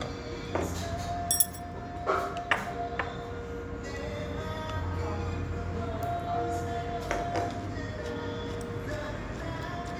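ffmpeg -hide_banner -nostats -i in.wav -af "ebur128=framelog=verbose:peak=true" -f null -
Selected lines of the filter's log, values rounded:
Integrated loudness:
  I:         -32.9 LUFS
  Threshold: -42.9 LUFS
Loudness range:
  LRA:         4.2 LU
  Threshold: -53.0 LUFS
  LRA low:   -34.9 LUFS
  LRA high:  -30.7 LUFS
True peak:
  Peak:       -6.1 dBFS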